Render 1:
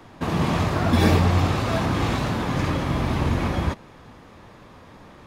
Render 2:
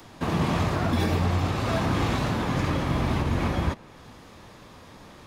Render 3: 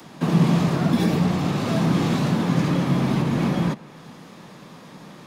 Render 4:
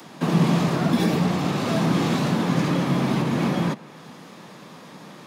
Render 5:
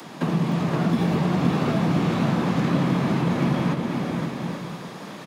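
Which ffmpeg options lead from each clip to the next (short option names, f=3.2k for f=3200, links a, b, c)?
-filter_complex "[0:a]acrossover=split=300|3400[a][b][c];[c]acompressor=mode=upward:threshold=-49dB:ratio=2.5[d];[a][b][d]amix=inputs=3:normalize=0,alimiter=limit=-13dB:level=0:latency=1:release=194,volume=-1.5dB"
-filter_complex "[0:a]lowshelf=f=110:t=q:w=3:g=-13,acrossover=split=150|570|3400[a][b][c][d];[c]asoftclip=type=tanh:threshold=-32.5dB[e];[a][b][e][d]amix=inputs=4:normalize=0,volume=3dB"
-af "highpass=f=180:p=1,volume=1.5dB"
-filter_complex "[0:a]acrossover=split=150|3200[a][b][c];[a]acompressor=threshold=-31dB:ratio=4[d];[b]acompressor=threshold=-28dB:ratio=4[e];[c]acompressor=threshold=-54dB:ratio=4[f];[d][e][f]amix=inputs=3:normalize=0,asplit=2[g][h];[h]aecho=0:1:520|832|1019|1132|1199:0.631|0.398|0.251|0.158|0.1[i];[g][i]amix=inputs=2:normalize=0,volume=3.5dB"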